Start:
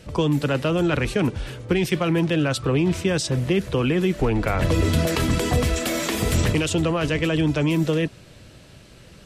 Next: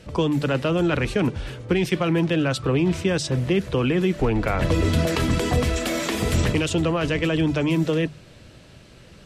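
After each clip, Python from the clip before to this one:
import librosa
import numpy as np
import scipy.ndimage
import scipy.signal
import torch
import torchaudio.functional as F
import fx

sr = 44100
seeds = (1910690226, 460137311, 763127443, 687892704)

y = fx.high_shelf(x, sr, hz=9100.0, db=-8.0)
y = fx.hum_notches(y, sr, base_hz=50, count=3)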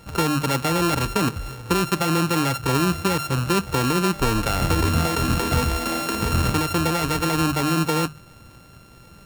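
y = np.r_[np.sort(x[:len(x) // 32 * 32].reshape(-1, 32), axis=1).ravel(), x[len(x) // 32 * 32:]]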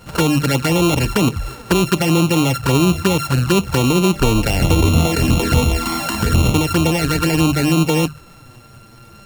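y = fx.env_flanger(x, sr, rest_ms=10.5, full_db=-17.5)
y = F.gain(torch.from_numpy(y), 7.5).numpy()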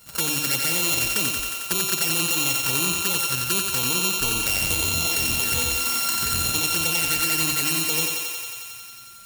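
y = scipy.signal.lfilter([1.0, -0.9], [1.0], x)
y = fx.echo_thinned(y, sr, ms=90, feedback_pct=81, hz=330.0, wet_db=-4)
y = F.gain(torch.from_numpy(y), 1.5).numpy()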